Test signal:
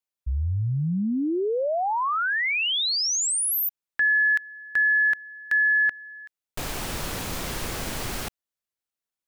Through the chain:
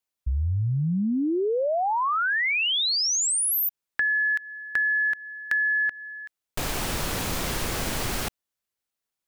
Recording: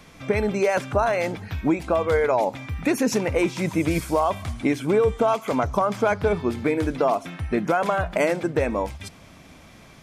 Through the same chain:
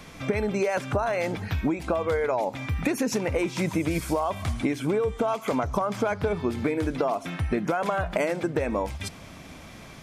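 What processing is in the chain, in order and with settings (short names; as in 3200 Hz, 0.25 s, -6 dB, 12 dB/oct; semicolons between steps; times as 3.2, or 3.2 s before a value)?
compressor, threshold -26 dBFS; gain +3.5 dB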